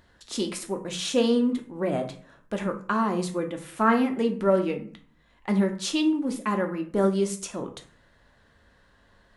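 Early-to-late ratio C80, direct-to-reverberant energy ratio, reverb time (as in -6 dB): 16.5 dB, 4.0 dB, 0.45 s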